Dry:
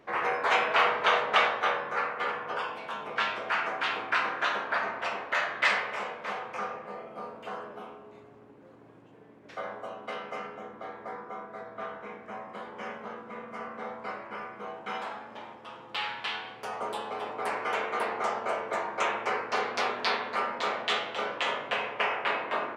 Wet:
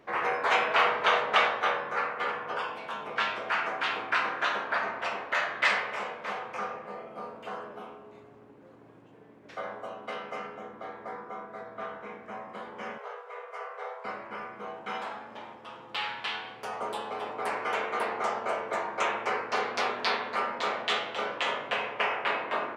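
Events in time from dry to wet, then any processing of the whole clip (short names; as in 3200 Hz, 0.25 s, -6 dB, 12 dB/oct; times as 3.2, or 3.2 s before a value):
12.98–14.05 brick-wall FIR high-pass 390 Hz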